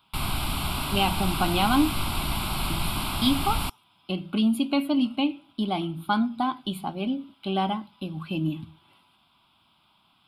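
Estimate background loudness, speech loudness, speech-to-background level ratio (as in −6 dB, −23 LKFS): −29.0 LKFS, −27.5 LKFS, 1.5 dB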